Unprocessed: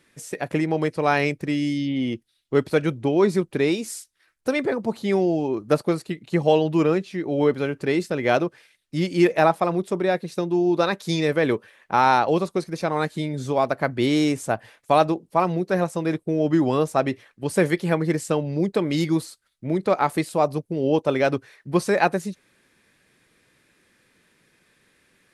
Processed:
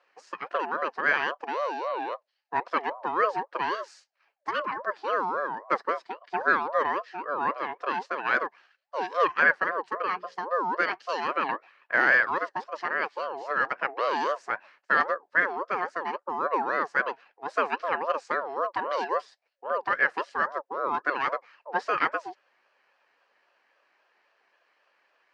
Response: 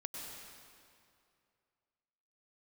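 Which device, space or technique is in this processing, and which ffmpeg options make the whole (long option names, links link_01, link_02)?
voice changer toy: -filter_complex "[0:a]aeval=exprs='val(0)*sin(2*PI*710*n/s+710*0.25/3.7*sin(2*PI*3.7*n/s))':channel_layout=same,highpass=470,equalizer=frequency=560:width_type=q:width=4:gain=6,equalizer=frequency=1700:width_type=q:width=4:gain=10,equalizer=frequency=3500:width_type=q:width=4:gain=-8,lowpass=frequency=4900:width=0.5412,lowpass=frequency=4900:width=1.3066,asettb=1/sr,asplit=3[link_01][link_02][link_03];[link_01]atrim=end=10.004[link_04];[link_02]atrim=start=10:end=10.4,asetpts=PTS-STARTPTS,afade=type=in:duration=0.004:curve=qsin,afade=type=out:start_time=0.396:duration=0.004:curve=qsin,bandreject=frequency=60:width_type=h:width=6,bandreject=frequency=120:width_type=h:width=6,bandreject=frequency=180:width_type=h:width=6,bandreject=frequency=240:width_type=h:width=6,bandreject=frequency=300:width_type=h:width=6,bandreject=frequency=360:width_type=h:width=6,bandreject=frequency=420:width_type=h:width=6,bandreject=frequency=480:width_type=h:width=6,bandreject=frequency=540:width_type=h:width=6[link_05];[link_03]atrim=start=10.396[link_06];[link_04][link_05]acrossfade=duration=0.004:curve1=hsin:curve2=qsin[link_07];[link_07][link_06]acrossfade=duration=0.004:curve1=qsin:curve2=hsin,volume=-4dB"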